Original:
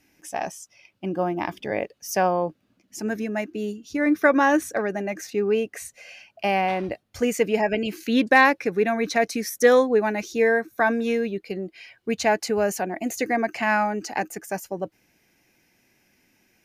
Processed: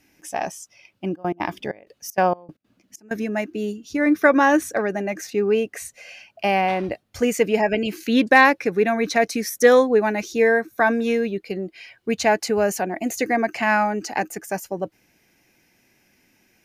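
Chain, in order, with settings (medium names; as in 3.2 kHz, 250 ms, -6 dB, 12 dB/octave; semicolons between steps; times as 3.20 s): 1.14–3.18 s: trance gate "x.xxxx..xxx.xx.." 193 bpm -24 dB; trim +2.5 dB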